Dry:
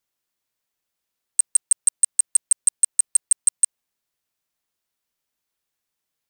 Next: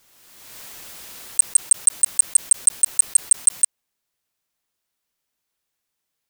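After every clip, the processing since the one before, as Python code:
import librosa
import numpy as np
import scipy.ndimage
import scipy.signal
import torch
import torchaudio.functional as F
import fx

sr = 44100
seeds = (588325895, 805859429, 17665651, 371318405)

y = fx.pre_swell(x, sr, db_per_s=34.0)
y = y * librosa.db_to_amplitude(2.0)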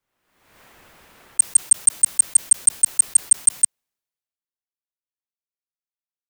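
y = fx.band_widen(x, sr, depth_pct=70)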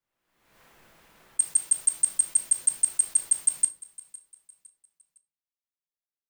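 y = fx.echo_feedback(x, sr, ms=509, feedback_pct=38, wet_db=-21)
y = fx.room_shoebox(y, sr, seeds[0], volume_m3=240.0, walls='furnished', distance_m=0.74)
y = y * librosa.db_to_amplitude(-8.0)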